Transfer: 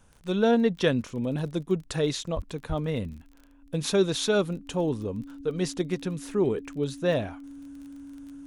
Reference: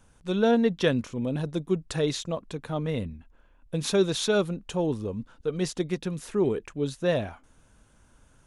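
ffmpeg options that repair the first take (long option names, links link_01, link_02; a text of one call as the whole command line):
ffmpeg -i in.wav -filter_complex "[0:a]adeclick=threshold=4,bandreject=frequency=280:width=30,asplit=3[link_01][link_02][link_03];[link_01]afade=type=out:start_time=2.35:duration=0.02[link_04];[link_02]highpass=frequency=140:width=0.5412,highpass=frequency=140:width=1.3066,afade=type=in:start_time=2.35:duration=0.02,afade=type=out:start_time=2.47:duration=0.02[link_05];[link_03]afade=type=in:start_time=2.47:duration=0.02[link_06];[link_04][link_05][link_06]amix=inputs=3:normalize=0,asplit=3[link_07][link_08][link_09];[link_07]afade=type=out:start_time=2.68:duration=0.02[link_10];[link_08]highpass=frequency=140:width=0.5412,highpass=frequency=140:width=1.3066,afade=type=in:start_time=2.68:duration=0.02,afade=type=out:start_time=2.8:duration=0.02[link_11];[link_09]afade=type=in:start_time=2.8:duration=0.02[link_12];[link_10][link_11][link_12]amix=inputs=3:normalize=0" out.wav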